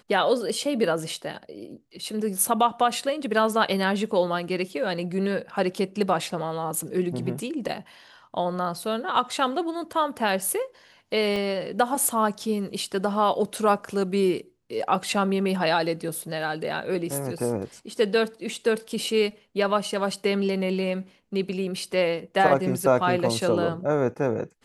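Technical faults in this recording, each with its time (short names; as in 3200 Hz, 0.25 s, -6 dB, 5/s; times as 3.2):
11.36 gap 2.4 ms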